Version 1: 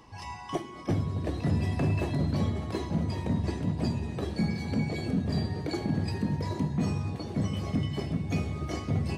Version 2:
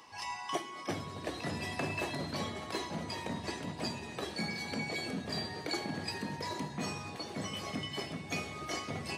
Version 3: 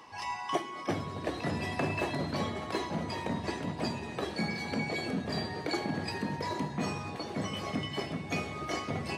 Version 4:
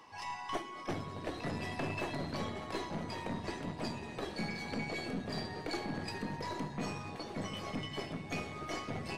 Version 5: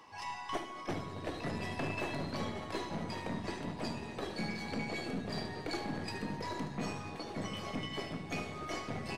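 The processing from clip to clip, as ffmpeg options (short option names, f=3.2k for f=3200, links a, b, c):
-af "highpass=f=1.2k:p=1,volume=4.5dB"
-af "highshelf=f=3.1k:g=-8.5,volume=5dB"
-af "aeval=exprs='(tanh(20*val(0)+0.5)-tanh(0.5))/20':c=same,volume=-2.5dB"
-af "aecho=1:1:74|148|222|296|370:0.251|0.131|0.0679|0.0353|0.0184"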